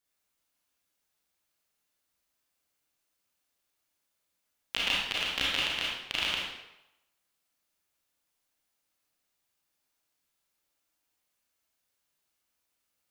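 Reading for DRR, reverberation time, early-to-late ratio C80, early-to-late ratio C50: -6.0 dB, 0.90 s, 2.0 dB, -1.5 dB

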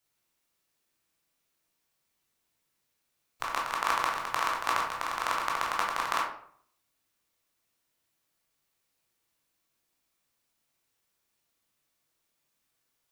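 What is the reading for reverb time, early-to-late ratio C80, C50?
0.60 s, 8.5 dB, 4.5 dB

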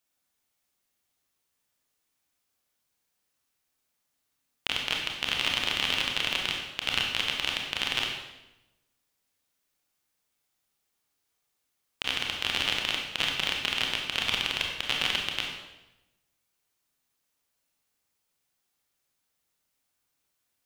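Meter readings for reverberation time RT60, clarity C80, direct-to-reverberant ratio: 0.95 s, 5.0 dB, 0.0 dB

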